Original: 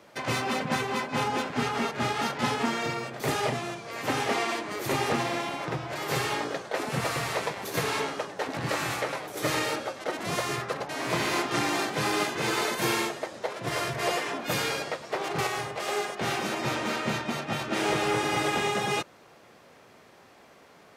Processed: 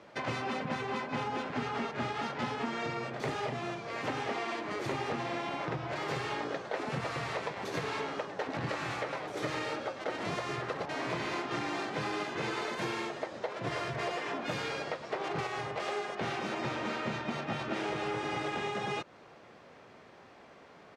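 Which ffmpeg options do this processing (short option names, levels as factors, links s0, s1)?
-filter_complex "[0:a]asplit=2[s0][s1];[s1]afade=t=in:st=9.55:d=0.01,afade=t=out:st=10.31:d=0.01,aecho=0:1:540|1080|1620|2160:0.298538|0.104488|0.0365709|0.0127998[s2];[s0][s2]amix=inputs=2:normalize=0,acompressor=threshold=0.0282:ratio=6,lowpass=7200,highshelf=f=5200:g=-9.5"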